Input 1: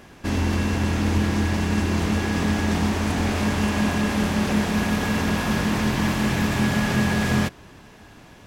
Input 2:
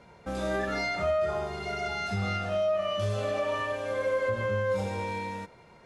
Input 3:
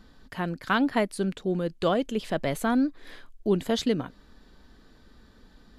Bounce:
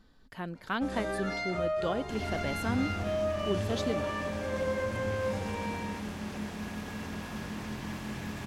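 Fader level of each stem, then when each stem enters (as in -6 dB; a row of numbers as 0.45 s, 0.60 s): -16.0 dB, -4.5 dB, -8.0 dB; 1.85 s, 0.55 s, 0.00 s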